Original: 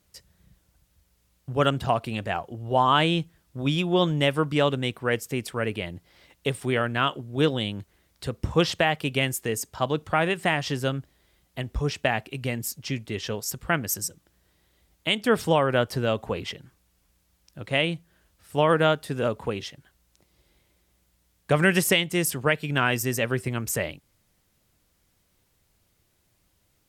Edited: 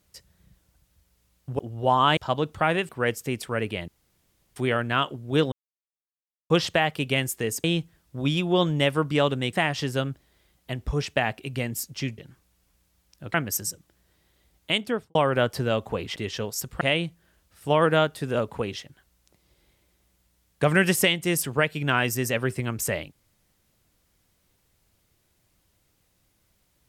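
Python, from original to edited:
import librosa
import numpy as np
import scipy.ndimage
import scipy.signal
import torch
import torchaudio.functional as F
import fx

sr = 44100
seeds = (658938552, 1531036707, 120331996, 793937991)

y = fx.studio_fade_out(x, sr, start_s=15.11, length_s=0.41)
y = fx.edit(y, sr, fx.cut(start_s=1.59, length_s=0.88),
    fx.swap(start_s=3.05, length_s=1.89, other_s=9.69, other_length_s=0.72),
    fx.room_tone_fill(start_s=5.93, length_s=0.68),
    fx.silence(start_s=7.57, length_s=0.98),
    fx.swap(start_s=13.06, length_s=0.65, other_s=16.53, other_length_s=1.16), tone=tone)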